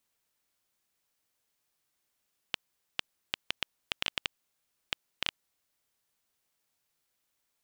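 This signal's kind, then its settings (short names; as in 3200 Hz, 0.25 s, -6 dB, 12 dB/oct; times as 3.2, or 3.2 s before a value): random clicks 5.1/s -10 dBFS 2.99 s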